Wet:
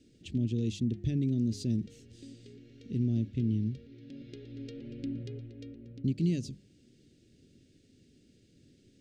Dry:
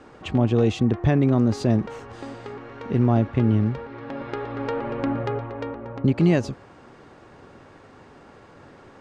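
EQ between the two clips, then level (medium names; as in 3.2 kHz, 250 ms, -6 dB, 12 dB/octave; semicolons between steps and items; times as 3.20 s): Chebyshev band-stop 260–3800 Hz, order 2; treble shelf 6.2 kHz +7.5 dB; hum notches 50/100/150/200 Hz; -9.0 dB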